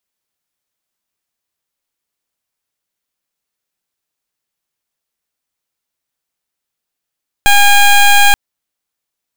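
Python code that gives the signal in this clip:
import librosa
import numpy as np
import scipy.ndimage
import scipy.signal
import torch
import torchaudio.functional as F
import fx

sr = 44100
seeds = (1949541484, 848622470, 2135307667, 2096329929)

y = fx.pulse(sr, length_s=0.88, hz=812.0, level_db=-6.5, duty_pct=15)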